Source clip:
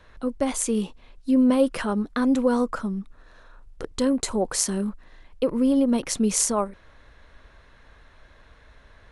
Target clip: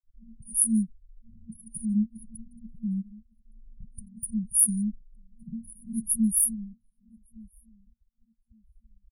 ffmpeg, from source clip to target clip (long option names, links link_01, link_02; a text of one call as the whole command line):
ffmpeg -i in.wav -filter_complex "[0:a]afftfilt=real='re*pow(10,7/40*sin(2*PI*(0.73*log(max(b,1)*sr/1024/100)/log(2)-(0.77)*(pts-256)/sr)))':imag='im*pow(10,7/40*sin(2*PI*(0.73*log(max(b,1)*sr/1024/100)/log(2)-(0.77)*(pts-256)/sr)))':win_size=1024:overlap=0.75,asplit=2[link_01][link_02];[link_02]adynamicsmooth=sensitivity=3.5:basefreq=610,volume=-1dB[link_03];[link_01][link_03]amix=inputs=2:normalize=0,bass=frequency=250:gain=-10,treble=frequency=4000:gain=9,afftfilt=real='re*gte(hypot(re,im),0.0224)':imag='im*gte(hypot(re,im),0.0224)':win_size=1024:overlap=0.75,asplit=2[link_04][link_05];[link_05]adelay=1163,lowpass=frequency=1400:poles=1,volume=-23dB,asplit=2[link_06][link_07];[link_07]adelay=1163,lowpass=frequency=1400:poles=1,volume=0.19[link_08];[link_06][link_08]amix=inputs=2:normalize=0[link_09];[link_04][link_09]amix=inputs=2:normalize=0,afftfilt=real='re*(1-between(b*sr/4096,230,9200))':imag='im*(1-between(b*sr/4096,230,9200))':win_size=4096:overlap=0.75" out.wav